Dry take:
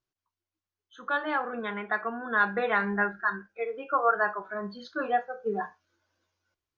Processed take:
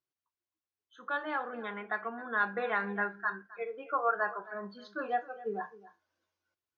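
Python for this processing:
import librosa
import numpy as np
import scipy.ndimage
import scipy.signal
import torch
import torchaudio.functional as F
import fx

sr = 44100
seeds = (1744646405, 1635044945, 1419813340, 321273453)

y = fx.highpass(x, sr, hz=180.0, slope=6)
y = fx.high_shelf(y, sr, hz=5100.0, db=-5.0)
y = y + 10.0 ** (-18.5 / 20.0) * np.pad(y, (int(264 * sr / 1000.0), 0))[:len(y)]
y = F.gain(torch.from_numpy(y), -5.0).numpy()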